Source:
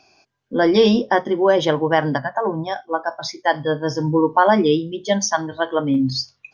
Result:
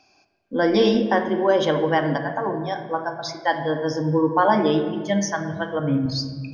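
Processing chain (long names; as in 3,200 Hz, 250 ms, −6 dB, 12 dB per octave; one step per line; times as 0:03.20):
0:04.88–0:06.06: graphic EQ with 10 bands 125 Hz +12 dB, 250 Hz −5 dB, 1,000 Hz −5 dB, 2,000 Hz +4 dB, 4,000 Hz −8 dB
on a send: convolution reverb RT60 1.6 s, pre-delay 4 ms, DRR 5 dB
on the sum: level −4 dB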